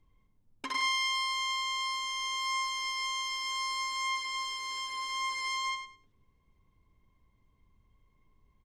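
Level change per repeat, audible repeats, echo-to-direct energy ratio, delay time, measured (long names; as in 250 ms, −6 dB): −14.5 dB, 2, −9.0 dB, 102 ms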